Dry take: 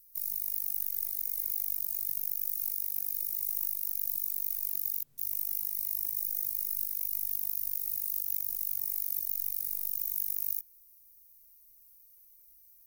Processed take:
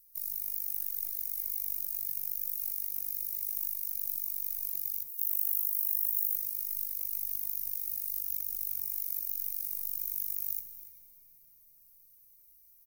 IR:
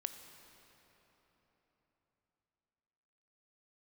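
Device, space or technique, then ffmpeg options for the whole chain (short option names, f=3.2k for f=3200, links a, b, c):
cave: -filter_complex "[0:a]aecho=1:1:285:0.15[a];[1:a]atrim=start_sample=2205[b];[a][b]afir=irnorm=-1:irlink=0,asettb=1/sr,asplit=3[c][d][e];[c]atrim=end=5.084[f];[d]atrim=start=5.08:end=6.36,asetpts=PTS-STARTPTS,afade=t=in:d=0.004:c=qsin,afade=t=out:st=1.276:d=0.004:c=qsin,aderivative[g];[e]atrim=start=6.356[h];[f][g]acrossfade=d=0.004:c1=hsin:c2=qsin[i];[i][h]acrossfade=d=0.004:c1=qsin:c2=hsin"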